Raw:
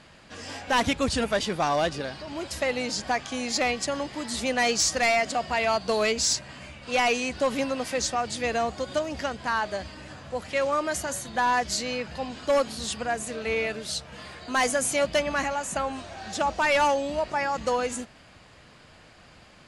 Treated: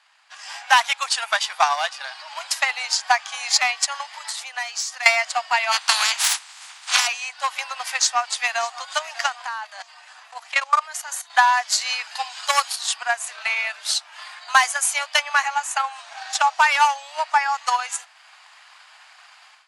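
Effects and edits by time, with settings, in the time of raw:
4.07–5.06 compressor, threshold -32 dBFS
5.71–7.06 spectral limiter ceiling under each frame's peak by 28 dB
7.67–8.81 echo throw 0.6 s, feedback 60%, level -14.5 dB
9.46–11.3 level quantiser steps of 12 dB
11.81–12.76 high shelf 3800 Hz +9.5 dB
whole clip: steep high-pass 770 Hz 48 dB/oct; AGC gain up to 11.5 dB; transient shaper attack +8 dB, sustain -3 dB; gain -5.5 dB

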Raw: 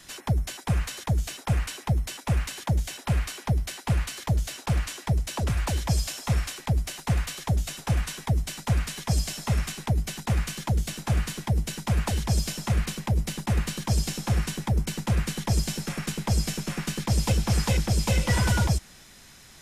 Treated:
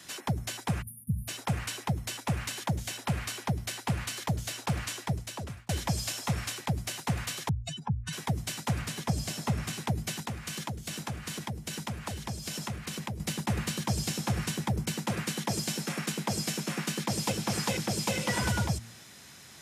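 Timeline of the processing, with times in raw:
0.82–1.28 spectral delete 240–9100 Hz
4.95–5.69 fade out
7.49–8.13 spectral contrast raised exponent 2.8
8.81–9.73 tilt shelf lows +3 dB
10.27–13.2 compressor, threshold -31 dBFS
14.94–18.43 HPF 170 Hz
whole clip: HPF 82 Hz 24 dB/oct; de-hum 114.9 Hz, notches 2; compressor, threshold -25 dBFS

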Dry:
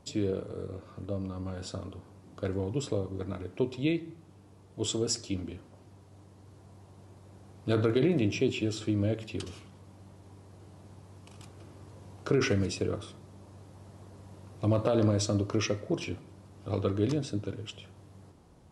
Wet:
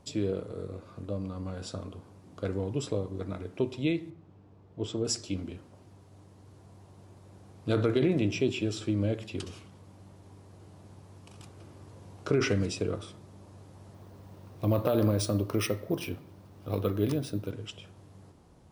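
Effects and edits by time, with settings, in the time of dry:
4.1–5.05 tape spacing loss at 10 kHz 22 dB
13.94–17.51 careless resampling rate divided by 3×, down filtered, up hold

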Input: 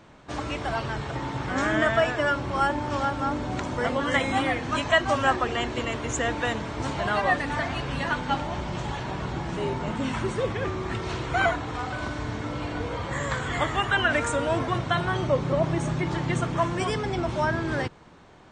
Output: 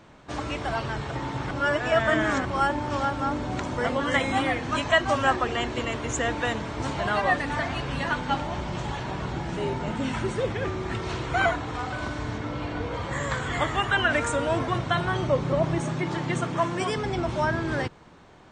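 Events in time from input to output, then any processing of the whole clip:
1.51–2.45 reverse
9.36–10.93 notch 1100 Hz
12.38–12.94 air absorption 56 m
15.8–16.98 HPF 130 Hz

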